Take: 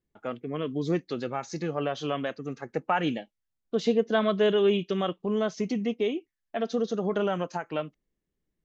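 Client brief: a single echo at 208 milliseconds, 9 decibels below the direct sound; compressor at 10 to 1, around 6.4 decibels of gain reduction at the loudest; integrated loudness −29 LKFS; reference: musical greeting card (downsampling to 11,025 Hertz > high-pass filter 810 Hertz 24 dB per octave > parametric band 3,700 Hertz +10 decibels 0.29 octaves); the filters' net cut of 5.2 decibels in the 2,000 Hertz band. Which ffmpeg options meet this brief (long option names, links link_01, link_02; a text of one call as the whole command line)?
ffmpeg -i in.wav -af "equalizer=frequency=2000:width_type=o:gain=-8,acompressor=threshold=-25dB:ratio=10,aecho=1:1:208:0.355,aresample=11025,aresample=44100,highpass=frequency=810:width=0.5412,highpass=frequency=810:width=1.3066,equalizer=frequency=3700:width_type=o:width=0.29:gain=10,volume=12dB" out.wav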